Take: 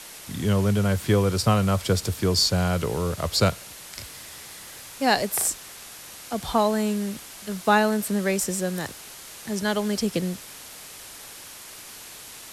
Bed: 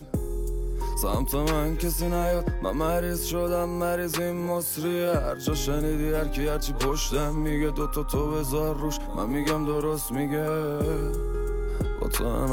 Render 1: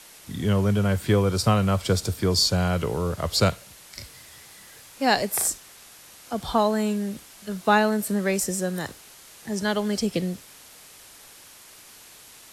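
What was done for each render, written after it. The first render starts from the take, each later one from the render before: noise print and reduce 6 dB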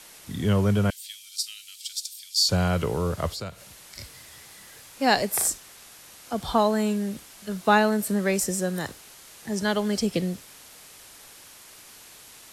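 0.9–2.49 inverse Chebyshev high-pass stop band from 960 Hz, stop band 60 dB; 3.32–3.99 compressor 2.5:1, threshold -38 dBFS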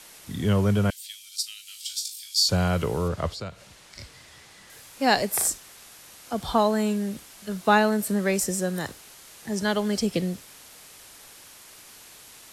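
1.64–2.4 flutter echo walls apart 3.2 m, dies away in 0.26 s; 3.08–4.7 air absorption 54 m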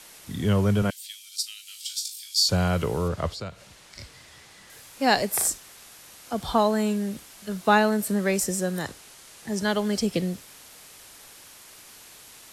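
0.82–2.3 HPF 130 Hz; 8.83–9.48 LPF 12000 Hz 24 dB/oct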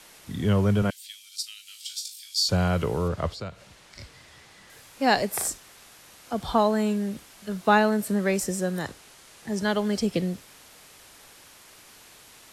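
high shelf 4600 Hz -5.5 dB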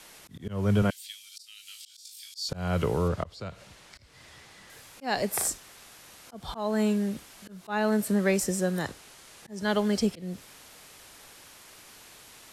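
auto swell 0.277 s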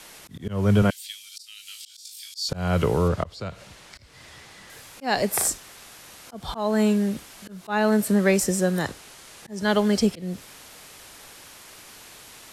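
gain +5 dB

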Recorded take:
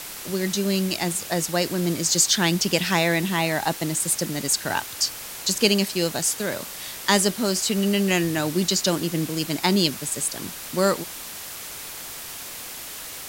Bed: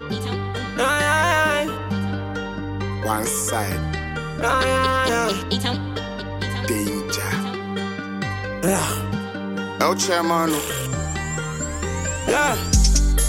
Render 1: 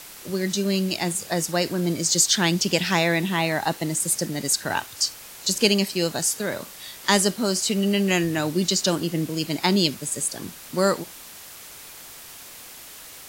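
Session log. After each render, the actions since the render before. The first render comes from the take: noise print and reduce 6 dB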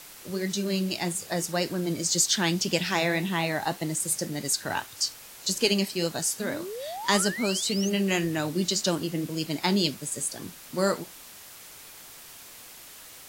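flange 1.8 Hz, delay 5.4 ms, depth 4.7 ms, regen -67%; 6.39–7.9 painted sound rise 200–6700 Hz -36 dBFS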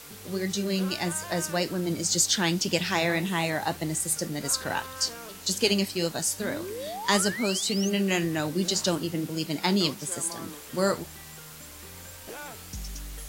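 add bed -22.5 dB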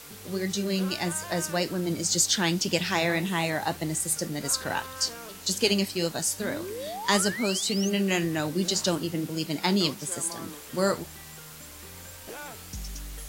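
nothing audible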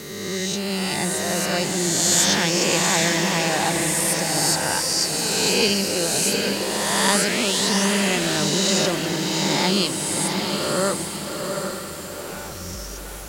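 spectral swells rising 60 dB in 1.83 s; diffused feedback echo 0.776 s, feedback 42%, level -4 dB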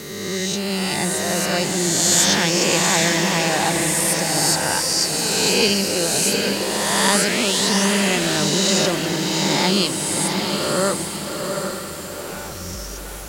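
gain +2 dB; limiter -1 dBFS, peak gain reduction 1 dB

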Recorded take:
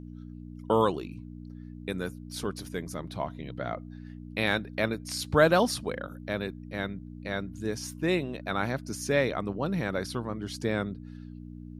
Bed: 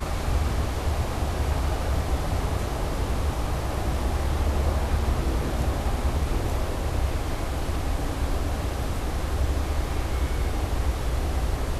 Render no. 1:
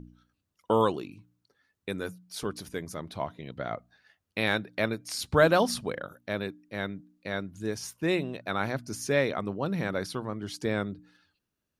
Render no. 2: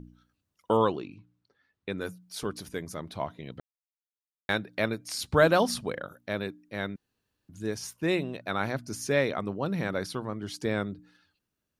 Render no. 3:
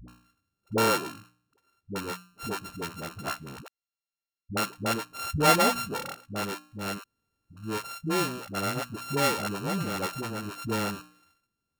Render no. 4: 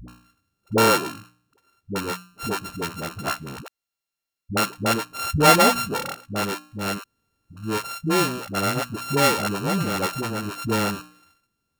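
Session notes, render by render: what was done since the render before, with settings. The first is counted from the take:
de-hum 60 Hz, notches 5
0.77–2.01 LPF 4300 Hz; 3.6–4.49 mute; 6.96–7.49 room tone
sample sorter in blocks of 32 samples; dispersion highs, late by 81 ms, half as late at 310 Hz
gain +6.5 dB; limiter -1 dBFS, peak gain reduction 1 dB

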